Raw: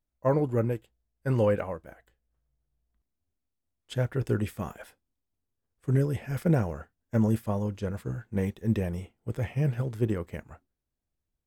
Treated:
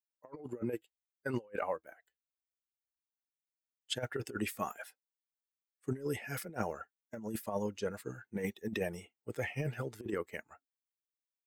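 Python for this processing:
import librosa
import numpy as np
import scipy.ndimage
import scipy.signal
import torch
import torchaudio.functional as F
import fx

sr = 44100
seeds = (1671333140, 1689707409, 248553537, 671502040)

y = fx.bin_expand(x, sr, power=1.5)
y = scipy.signal.sosfilt(scipy.signal.butter(2, 310.0, 'highpass', fs=sr, output='sos'), y)
y = fx.over_compress(y, sr, threshold_db=-38.0, ratio=-0.5)
y = y * librosa.db_to_amplitude(2.0)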